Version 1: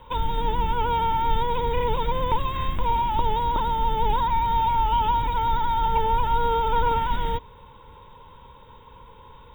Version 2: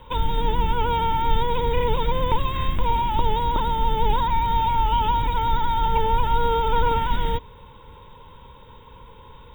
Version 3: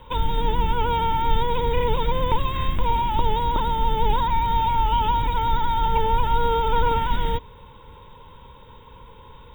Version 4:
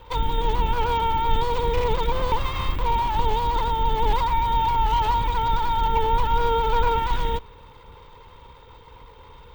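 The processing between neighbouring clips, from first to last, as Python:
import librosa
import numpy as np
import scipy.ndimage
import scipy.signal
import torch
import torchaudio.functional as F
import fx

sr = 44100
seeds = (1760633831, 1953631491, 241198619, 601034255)

y1 = fx.peak_eq(x, sr, hz=930.0, db=-3.5, octaves=1.5)
y1 = F.gain(torch.from_numpy(y1), 3.5).numpy()
y2 = y1
y3 = fx.lower_of_two(y2, sr, delay_ms=2.2)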